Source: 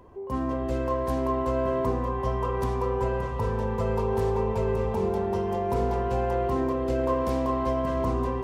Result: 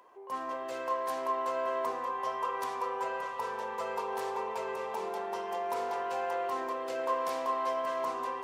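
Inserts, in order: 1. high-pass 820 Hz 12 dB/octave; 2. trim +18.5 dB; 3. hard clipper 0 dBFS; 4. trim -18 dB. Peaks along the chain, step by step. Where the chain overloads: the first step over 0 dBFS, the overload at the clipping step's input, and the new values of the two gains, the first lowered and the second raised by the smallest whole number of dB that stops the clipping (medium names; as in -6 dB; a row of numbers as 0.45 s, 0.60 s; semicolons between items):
-20.5 dBFS, -2.0 dBFS, -2.0 dBFS, -20.0 dBFS; nothing clips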